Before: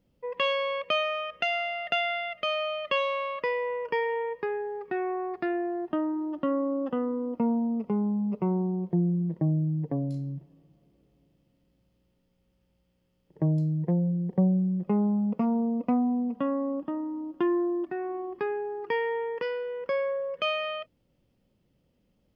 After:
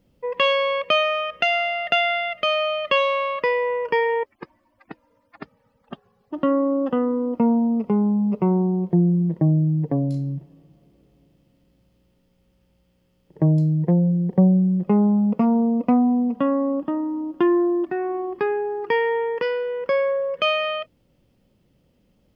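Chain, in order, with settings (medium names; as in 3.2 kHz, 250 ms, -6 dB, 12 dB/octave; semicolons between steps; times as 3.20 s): 4.23–6.33 s: harmonic-percussive separation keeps percussive; trim +7.5 dB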